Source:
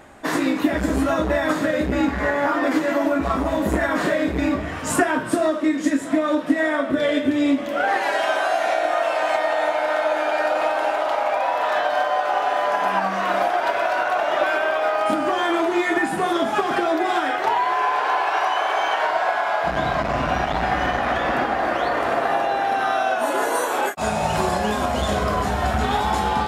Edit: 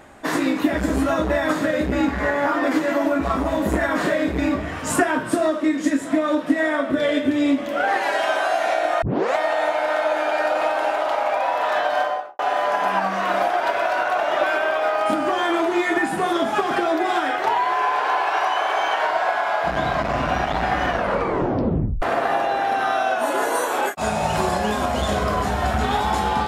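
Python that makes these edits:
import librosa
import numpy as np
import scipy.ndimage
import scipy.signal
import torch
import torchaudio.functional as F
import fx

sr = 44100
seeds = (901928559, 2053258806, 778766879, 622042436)

y = fx.studio_fade_out(x, sr, start_s=12.01, length_s=0.38)
y = fx.edit(y, sr, fx.tape_start(start_s=9.02, length_s=0.34),
    fx.tape_stop(start_s=20.88, length_s=1.14), tone=tone)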